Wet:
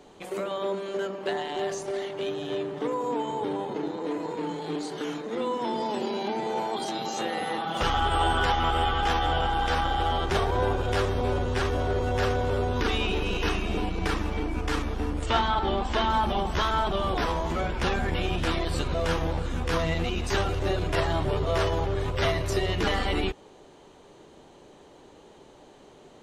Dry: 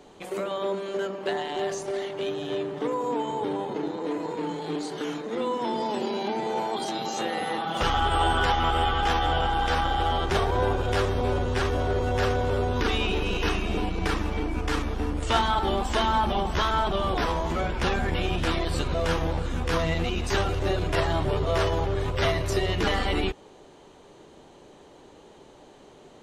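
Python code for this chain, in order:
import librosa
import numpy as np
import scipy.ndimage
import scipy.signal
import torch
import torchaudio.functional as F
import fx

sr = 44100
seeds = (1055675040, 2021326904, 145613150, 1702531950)

y = fx.lowpass(x, sr, hz=4900.0, slope=12, at=(15.26, 16.1))
y = F.gain(torch.from_numpy(y), -1.0).numpy()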